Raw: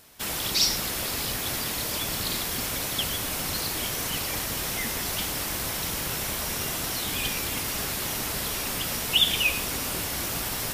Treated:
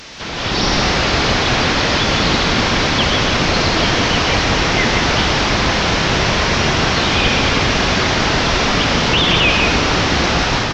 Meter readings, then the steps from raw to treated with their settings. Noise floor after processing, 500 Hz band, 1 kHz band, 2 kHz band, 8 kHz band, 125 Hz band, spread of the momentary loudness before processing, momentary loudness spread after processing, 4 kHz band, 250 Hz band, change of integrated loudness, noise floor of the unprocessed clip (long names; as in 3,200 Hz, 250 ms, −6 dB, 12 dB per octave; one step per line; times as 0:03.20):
−19 dBFS, +18.5 dB, +18.5 dB, +16.5 dB, +3.0 dB, +18.0 dB, 6 LU, 2 LU, +11.5 dB, +18.5 dB, +12.0 dB, −31 dBFS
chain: linear delta modulator 32 kbit/s, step −35.5 dBFS
automatic gain control gain up to 10 dB
loudspeakers that aren't time-aligned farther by 45 metres −9 dB, 60 metres −6 dB
level +6.5 dB